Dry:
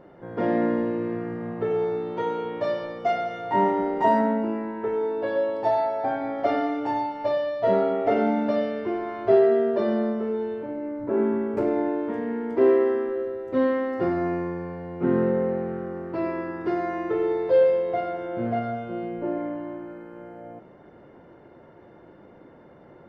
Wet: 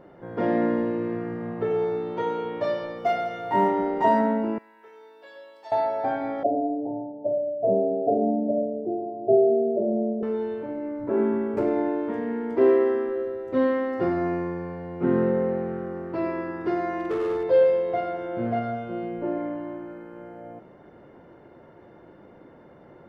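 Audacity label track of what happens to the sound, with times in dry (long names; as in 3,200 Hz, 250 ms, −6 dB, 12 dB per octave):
2.980000	3.680000	floating-point word with a short mantissa of 6 bits
4.580000	5.720000	first difference
6.430000	10.230000	Chebyshev band-pass filter 110–730 Hz, order 5
16.990000	17.440000	hard clipping −22.5 dBFS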